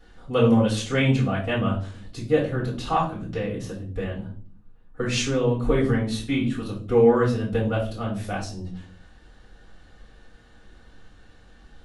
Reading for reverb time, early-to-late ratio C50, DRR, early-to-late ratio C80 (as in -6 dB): not exponential, 8.0 dB, -5.5 dB, 13.0 dB